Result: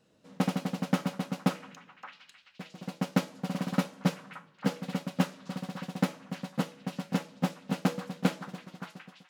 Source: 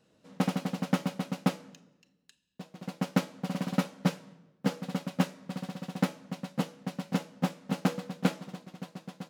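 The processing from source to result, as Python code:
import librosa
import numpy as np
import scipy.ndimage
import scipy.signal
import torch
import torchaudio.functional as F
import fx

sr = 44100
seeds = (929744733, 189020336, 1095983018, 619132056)

y = fx.fade_out_tail(x, sr, length_s=0.57)
y = fx.echo_stepped(y, sr, ms=573, hz=1300.0, octaves=0.7, feedback_pct=70, wet_db=-7.0)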